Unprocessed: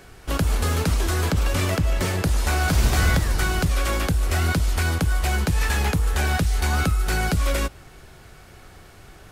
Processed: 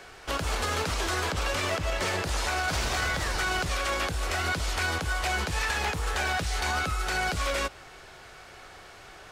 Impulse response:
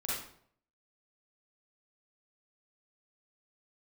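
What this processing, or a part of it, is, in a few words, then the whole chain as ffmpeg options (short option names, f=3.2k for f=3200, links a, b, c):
DJ mixer with the lows and highs turned down: -filter_complex "[0:a]acrossover=split=420 7700:gain=0.224 1 0.251[a][b][c];[a][b][c]amix=inputs=3:normalize=0,alimiter=limit=-22dB:level=0:latency=1:release=55,volume=3dB"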